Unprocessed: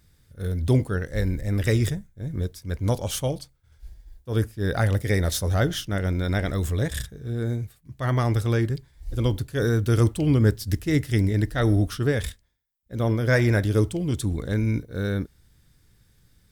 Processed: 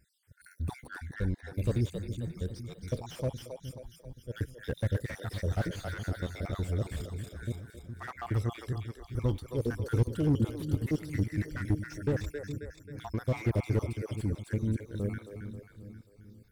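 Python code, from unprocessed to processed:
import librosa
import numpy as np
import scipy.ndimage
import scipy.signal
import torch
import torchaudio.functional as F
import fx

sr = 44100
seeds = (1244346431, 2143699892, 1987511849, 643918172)

p1 = fx.spec_dropout(x, sr, seeds[0], share_pct=61)
p2 = fx.lowpass(p1, sr, hz=5000.0, slope=12, at=(0.87, 1.54))
p3 = p2 + fx.echo_split(p2, sr, split_hz=330.0, low_ms=415, high_ms=268, feedback_pct=52, wet_db=-8, dry=0)
p4 = fx.slew_limit(p3, sr, full_power_hz=42.0)
y = F.gain(torch.from_numpy(p4), -5.5).numpy()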